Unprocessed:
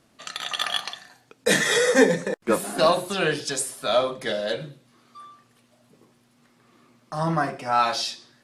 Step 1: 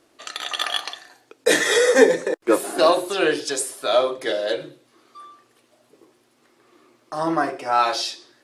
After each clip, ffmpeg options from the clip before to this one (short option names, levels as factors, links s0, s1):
-af "lowshelf=f=260:t=q:w=3:g=-7.5,volume=1.19"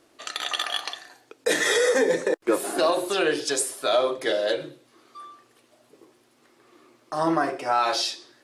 -af "alimiter=limit=0.251:level=0:latency=1:release=130"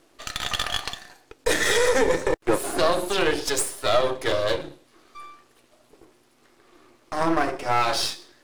-af "aeval=exprs='if(lt(val(0),0),0.251*val(0),val(0))':c=same,volume=1.58"